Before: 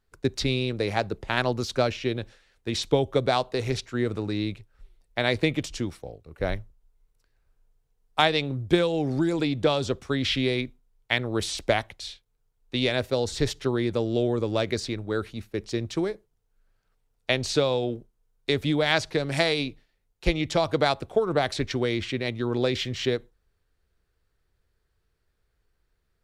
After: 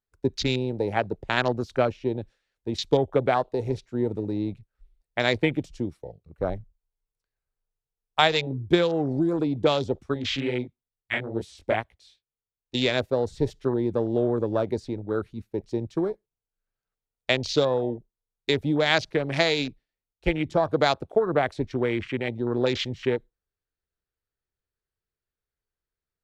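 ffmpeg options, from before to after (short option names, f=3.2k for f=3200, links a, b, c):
-filter_complex "[0:a]asettb=1/sr,asplit=3[a][b][c];[a]atrim=end=6.534[d];[b]atrim=start=6.53:end=8.47,asetpts=PTS-STARTPTS,afade=t=in:d=0.004:c=qsin,afade=t=out:st=1.936:d=0.004:c=qsin,bandreject=f=290:w=5.2[e];[c]atrim=start=8.466[f];[d][e]acrossfade=d=0.004:c1=hsin:c2=qsin[g];[g][f]acrossfade=d=0.004:c1=qsin:c2=hsin,asettb=1/sr,asplit=3[h][i][j];[h]atrim=end=10.144[k];[i]atrim=start=10.14:end=12.75,asetpts=PTS-STARTPTS,afade=t=in:d=0.004:c=qsin,afade=t=out:st=2.606:d=0.004:c=qsin,flanger=delay=16:depth=6.3:speed=2.3[l];[j]atrim=start=12.746[m];[k][l]acrossfade=d=0.004:c1=hsin:c2=qsin[n];[n][m]acrossfade=d=0.004:c1=qsin:c2=hsin,afwtdn=0.0224,lowshelf=f=92:g=-7,volume=1.5dB"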